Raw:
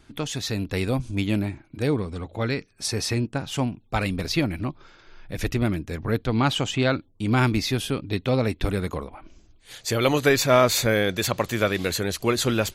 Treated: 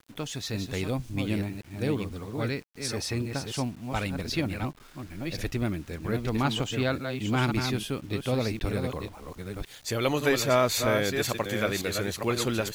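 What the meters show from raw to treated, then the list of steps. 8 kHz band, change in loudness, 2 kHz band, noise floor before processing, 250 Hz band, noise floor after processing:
−4.5 dB, −5.0 dB, −4.5 dB, −57 dBFS, −4.5 dB, −51 dBFS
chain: delay that plays each chunk backwards 537 ms, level −6 dB
bit-depth reduction 8 bits, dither none
level −5.5 dB

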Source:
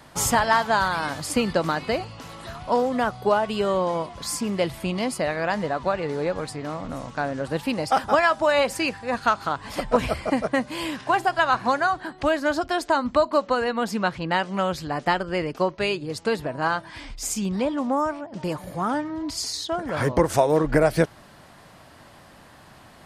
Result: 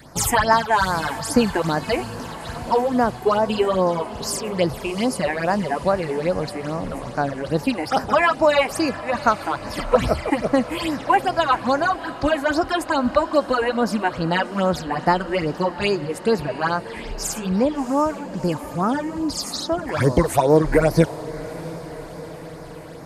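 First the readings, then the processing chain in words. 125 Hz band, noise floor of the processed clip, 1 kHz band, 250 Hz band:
+5.0 dB, −35 dBFS, +2.5 dB, +4.5 dB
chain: all-pass phaser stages 8, 2.4 Hz, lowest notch 160–3,300 Hz
feedback delay with all-pass diffusion 690 ms, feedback 66%, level −16 dB
level +5.5 dB

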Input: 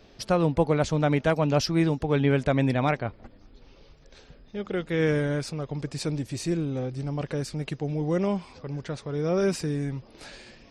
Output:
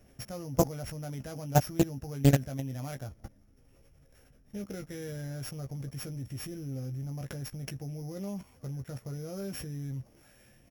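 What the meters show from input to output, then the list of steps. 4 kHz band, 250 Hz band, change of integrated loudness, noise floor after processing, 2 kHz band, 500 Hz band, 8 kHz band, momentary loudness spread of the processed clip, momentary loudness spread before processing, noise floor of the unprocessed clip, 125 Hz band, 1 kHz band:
−8.5 dB, −8.0 dB, −7.5 dB, −61 dBFS, −12.5 dB, −11.0 dB, −1.5 dB, 14 LU, 11 LU, −54 dBFS, −5.0 dB, −7.5 dB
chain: samples sorted by size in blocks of 8 samples
graphic EQ with 15 bands 100 Hz +8 dB, 400 Hz −5 dB, 1,000 Hz −7 dB, 4,000 Hz −12 dB
output level in coarse steps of 21 dB
double-tracking delay 15 ms −6.5 dB
highs frequency-modulated by the lows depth 0.5 ms
level +3 dB

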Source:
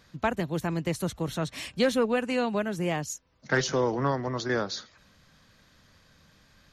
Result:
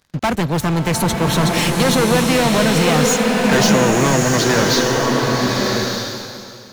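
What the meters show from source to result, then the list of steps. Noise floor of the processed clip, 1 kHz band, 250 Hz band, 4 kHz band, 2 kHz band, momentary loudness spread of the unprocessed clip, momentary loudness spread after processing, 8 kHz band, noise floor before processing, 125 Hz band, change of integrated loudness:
−36 dBFS, +14.5 dB, +14.5 dB, +17.5 dB, +13.5 dB, 8 LU, 7 LU, +19.0 dB, −61 dBFS, +15.0 dB, +13.0 dB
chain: leveller curve on the samples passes 5
slow-attack reverb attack 1,200 ms, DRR −1 dB

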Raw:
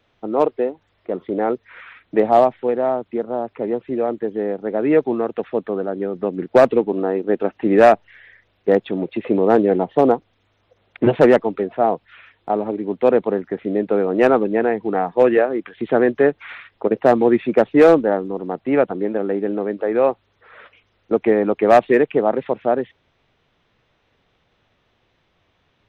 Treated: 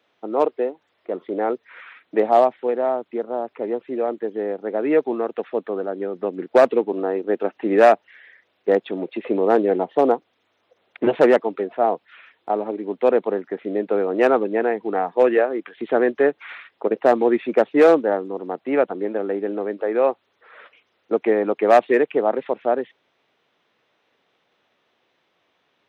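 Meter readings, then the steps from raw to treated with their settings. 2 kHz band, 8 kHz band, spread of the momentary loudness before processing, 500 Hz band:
−1.5 dB, can't be measured, 11 LU, −2.0 dB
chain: high-pass filter 280 Hz 12 dB per octave
level −1.5 dB

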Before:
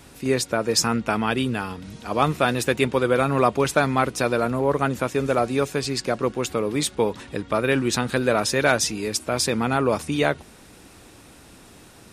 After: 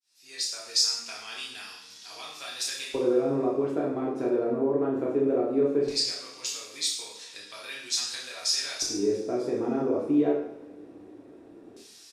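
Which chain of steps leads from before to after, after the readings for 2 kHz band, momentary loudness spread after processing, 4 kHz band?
−15.0 dB, 16 LU, −0.5 dB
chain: fade in at the beginning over 0.76 s
high-shelf EQ 9,300 Hz +8 dB
downward compressor, threshold −21 dBFS, peak gain reduction 8.5 dB
auto-filter band-pass square 0.17 Hz 360–5,100 Hz
double-tracking delay 30 ms −5.5 dB
coupled-rooms reverb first 0.66 s, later 2.6 s, from −21 dB, DRR −4 dB

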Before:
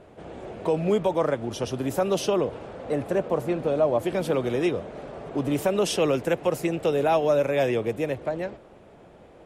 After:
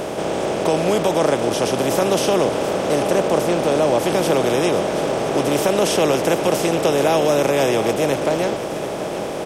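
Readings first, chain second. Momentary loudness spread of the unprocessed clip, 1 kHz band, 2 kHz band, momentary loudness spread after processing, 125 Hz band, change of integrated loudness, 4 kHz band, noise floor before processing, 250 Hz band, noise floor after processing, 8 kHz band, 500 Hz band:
11 LU, +9.5 dB, +9.5 dB, 5 LU, +5.5 dB, +7.0 dB, +11.0 dB, −50 dBFS, +7.0 dB, −26 dBFS, +12.5 dB, +7.0 dB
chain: compressor on every frequency bin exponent 0.4
high-shelf EQ 3,800 Hz +5.5 dB
single-tap delay 734 ms −11.5 dB

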